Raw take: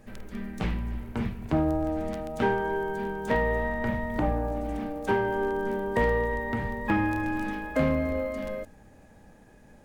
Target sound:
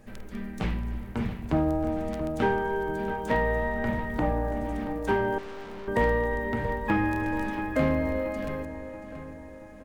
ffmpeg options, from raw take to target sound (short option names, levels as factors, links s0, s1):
-filter_complex "[0:a]asplit=2[s0][s1];[s1]adelay=680,lowpass=f=3800:p=1,volume=0.282,asplit=2[s2][s3];[s3]adelay=680,lowpass=f=3800:p=1,volume=0.51,asplit=2[s4][s5];[s5]adelay=680,lowpass=f=3800:p=1,volume=0.51,asplit=2[s6][s7];[s7]adelay=680,lowpass=f=3800:p=1,volume=0.51,asplit=2[s8][s9];[s9]adelay=680,lowpass=f=3800:p=1,volume=0.51[s10];[s0][s2][s4][s6][s8][s10]amix=inputs=6:normalize=0,asettb=1/sr,asplit=3[s11][s12][s13];[s11]atrim=end=5.384[s14];[s12]atrim=start=5.38:end=5.88,asetpts=PTS-STARTPTS,afade=t=in:d=0.004:c=qsin,afade=t=out:st=0.496:d=0.004:c=qsin,aeval=exprs='(tanh(89.1*val(0)+0.7)-tanh(0.7))/89.1':c=same[s15];[s13]atrim=start=5.876[s16];[s14][s15]acrossfade=d=0.004:c1=hsin:c2=qsin[s17];[s17][s16]acrossfade=d=0.004:c1=qsin:c2=hsin"